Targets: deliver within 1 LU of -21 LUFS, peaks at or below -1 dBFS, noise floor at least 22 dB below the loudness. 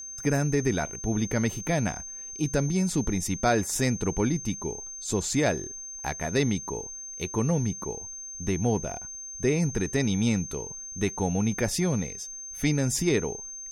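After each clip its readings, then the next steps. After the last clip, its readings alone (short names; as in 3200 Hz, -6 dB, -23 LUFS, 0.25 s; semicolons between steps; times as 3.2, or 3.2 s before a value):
steady tone 6300 Hz; tone level -37 dBFS; loudness -28.0 LUFS; peak -11.0 dBFS; loudness target -21.0 LUFS
-> notch 6300 Hz, Q 30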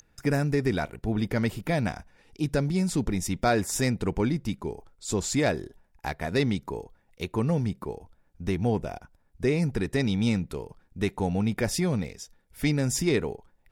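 steady tone none; loudness -28.0 LUFS; peak -11.5 dBFS; loudness target -21.0 LUFS
-> gain +7 dB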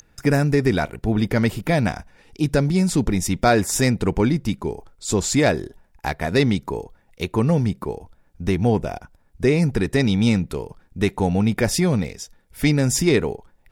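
loudness -21.0 LUFS; peak -4.5 dBFS; noise floor -59 dBFS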